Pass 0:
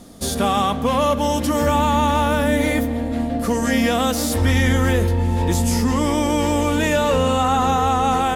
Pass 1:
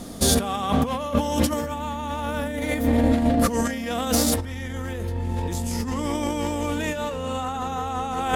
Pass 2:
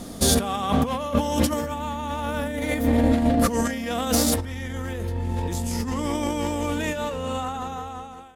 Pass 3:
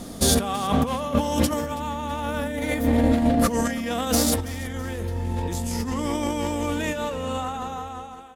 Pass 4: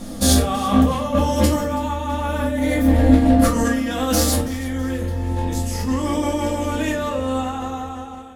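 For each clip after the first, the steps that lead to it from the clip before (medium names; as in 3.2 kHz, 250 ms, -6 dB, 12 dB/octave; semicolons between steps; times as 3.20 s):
compressor with a negative ratio -23 dBFS, ratio -0.5
fade out at the end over 0.98 s
feedback delay 328 ms, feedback 44%, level -19 dB
simulated room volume 240 m³, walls furnished, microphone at 2.3 m; trim -1 dB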